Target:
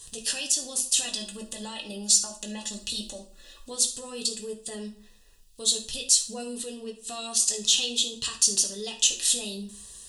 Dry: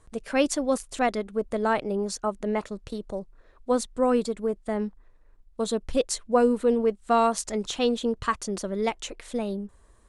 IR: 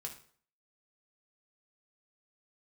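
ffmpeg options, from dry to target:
-filter_complex "[0:a]asettb=1/sr,asplit=3[a][b][c];[a]atrim=end=1.054[d];[b]atrim=start=1.05:end=3.7,asetpts=PTS-STARTPTS,afade=t=in:d=0.004:c=qsin,afade=t=out:st=2.646:d=0.004:c=qsin,aecho=1:1:3.5:0.82,atrim=end_sample=116865[e];[c]atrim=start=3.696[f];[d][e]acrossfade=d=0.004:c1=hsin:c2=qsin[g];[g][f]acrossfade=d=0.004:c1=qsin:c2=hsin,acompressor=threshold=-35dB:ratio=6,alimiter=level_in=8.5dB:limit=-24dB:level=0:latency=1:release=62,volume=-8.5dB,aexciter=amount=8.7:drive=8.2:freq=2.2k,asuperstop=centerf=2200:order=8:qfactor=4.1[h];[1:a]atrim=start_sample=2205[i];[h][i]afir=irnorm=-1:irlink=0,volume=3.5dB"

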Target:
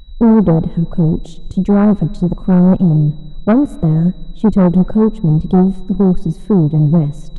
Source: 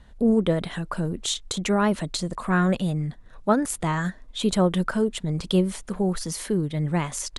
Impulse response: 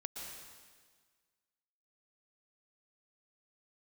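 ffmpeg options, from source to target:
-filter_complex "[0:a]tiltshelf=f=670:g=9,aeval=exprs='val(0)+0.00708*sin(2*PI*3900*n/s)':c=same,afwtdn=0.0708,aeval=exprs='(tanh(5.01*val(0)+0.2)-tanh(0.2))/5.01':c=same,asplit=2[a][b];[1:a]atrim=start_sample=2205,lowpass=7.8k[c];[b][c]afir=irnorm=-1:irlink=0,volume=-17.5dB[d];[a][d]amix=inputs=2:normalize=0,volume=8.5dB"

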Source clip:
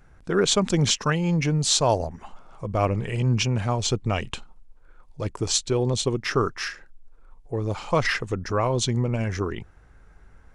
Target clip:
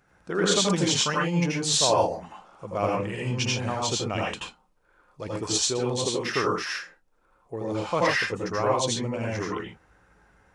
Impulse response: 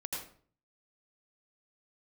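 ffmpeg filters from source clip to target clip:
-filter_complex "[0:a]highpass=f=250:p=1[a];[1:a]atrim=start_sample=2205,atrim=end_sample=6615[b];[a][b]afir=irnorm=-1:irlink=0"

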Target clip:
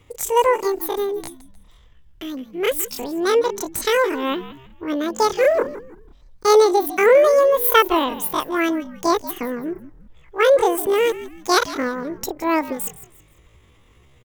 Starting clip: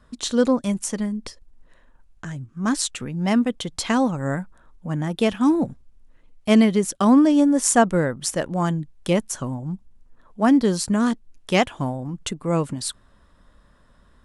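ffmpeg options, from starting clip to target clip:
-filter_complex "[0:a]asplit=4[a][b][c][d];[b]adelay=161,afreqshift=-36,volume=-15dB[e];[c]adelay=322,afreqshift=-72,volume=-24.9dB[f];[d]adelay=483,afreqshift=-108,volume=-34.8dB[g];[a][e][f][g]amix=inputs=4:normalize=0,asetrate=85689,aresample=44100,atempo=0.514651,volume=2dB"

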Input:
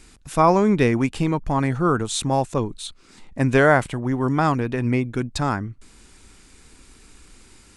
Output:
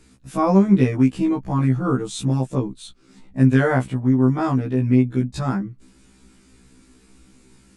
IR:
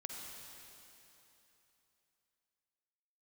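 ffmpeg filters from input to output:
-af "equalizer=f=200:t=o:w=1.8:g=11.5,afftfilt=real='re*1.73*eq(mod(b,3),0)':imag='im*1.73*eq(mod(b,3),0)':win_size=2048:overlap=0.75,volume=-4dB"

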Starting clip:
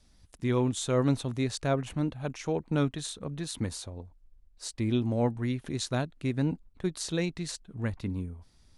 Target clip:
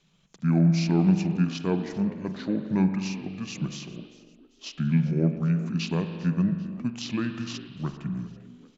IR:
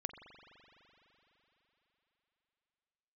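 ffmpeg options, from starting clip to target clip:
-filter_complex "[0:a]lowshelf=f=170:t=q:w=3:g=-13.5,asetrate=29433,aresample=44100,atempo=1.49831,asplit=4[a][b][c][d];[b]adelay=395,afreqshift=58,volume=-19dB[e];[c]adelay=790,afreqshift=116,volume=-26.5dB[f];[d]adelay=1185,afreqshift=174,volume=-34.1dB[g];[a][e][f][g]amix=inputs=4:normalize=0[h];[1:a]atrim=start_sample=2205,afade=t=out:st=0.4:d=0.01,atrim=end_sample=18081[i];[h][i]afir=irnorm=-1:irlink=0,volume=2dB"

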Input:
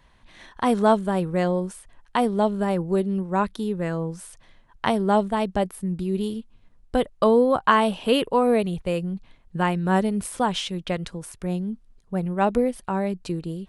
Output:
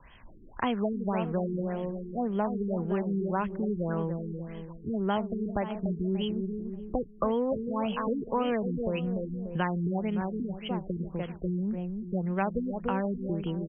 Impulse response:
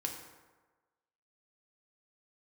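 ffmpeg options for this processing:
-filter_complex "[0:a]equalizer=f=4.2k:w=1.1:g=13.5,asplit=2[a][b];[b]adelay=292,lowpass=f=840:p=1,volume=-8dB,asplit=2[c][d];[d]adelay=292,lowpass=f=840:p=1,volume=0.39,asplit=2[e][f];[f]adelay=292,lowpass=f=840:p=1,volume=0.39,asplit=2[g][h];[h]adelay=292,lowpass=f=840:p=1,volume=0.39[i];[c][e][g][i]amix=inputs=4:normalize=0[j];[a][j]amix=inputs=2:normalize=0,acrossover=split=210|870[k][l][m];[k]acompressor=threshold=-31dB:ratio=4[n];[l]acompressor=threshold=-29dB:ratio=4[o];[m]acompressor=threshold=-29dB:ratio=4[p];[n][o][p]amix=inputs=3:normalize=0,highshelf=f=5.5k:g=6.5,asplit=2[q][r];[r]acompressor=threshold=-36dB:ratio=6,volume=2dB[s];[q][s]amix=inputs=2:normalize=0,afftfilt=real='re*lt(b*sr/1024,430*pow(3400/430,0.5+0.5*sin(2*PI*1.8*pts/sr)))':imag='im*lt(b*sr/1024,430*pow(3400/430,0.5+0.5*sin(2*PI*1.8*pts/sr)))':win_size=1024:overlap=0.75,volume=-4.5dB"

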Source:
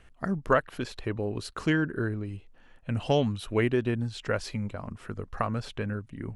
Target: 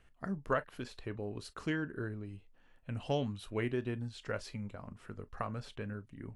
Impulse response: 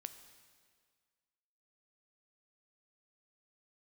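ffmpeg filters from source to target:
-filter_complex "[1:a]atrim=start_sample=2205,atrim=end_sample=3087,asetrate=66150,aresample=44100[a];[0:a][a]afir=irnorm=-1:irlink=0,volume=-1dB"

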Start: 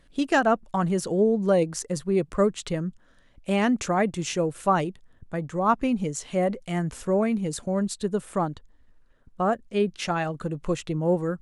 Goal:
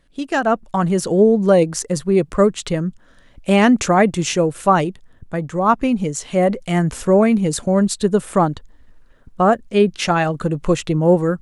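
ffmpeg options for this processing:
-af "dynaudnorm=f=300:g=3:m=12dB,volume=-1dB"

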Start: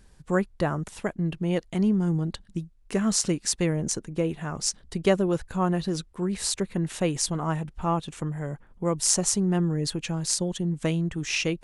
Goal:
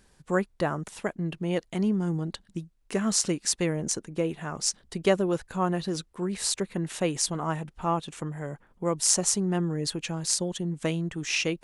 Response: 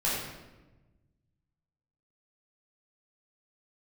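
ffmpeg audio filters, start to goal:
-af "lowshelf=f=130:g=-10.5"

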